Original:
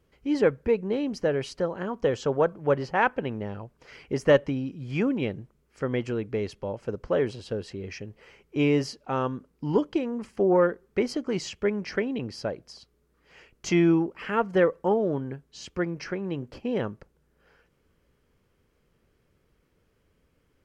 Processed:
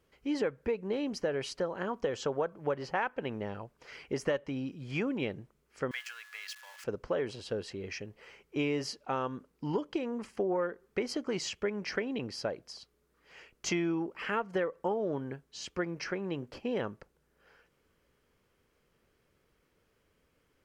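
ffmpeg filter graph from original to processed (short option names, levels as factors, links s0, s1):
-filter_complex "[0:a]asettb=1/sr,asplit=3[s0][s1][s2];[s0]atrim=end=5.914[s3];[s1]atrim=start=5.91:end=6.84,asetpts=PTS-STARTPTS,afade=t=in:d=0.004:c=qsin,afade=t=out:st=0.926:d=0.004:c=qsin,aeval=exprs='val(0)+0.5*0.0075*sgn(val(0))':c=same,highpass=f=1300:w=0.5412,highpass=f=1300:w=1.3066,aeval=exprs='val(0)+0.00224*sin(2*PI*1700*n/s)':c=same[s4];[s2]atrim=start=6.836[s5];[s3][s4]acrossfade=d=0.004:c1=hsin:c2=qsin[s6];[s6][s5]acrossfade=d=0.004:c1=qsin:c2=hsin,lowshelf=f=310:g=-8,acompressor=threshold=0.0398:ratio=6"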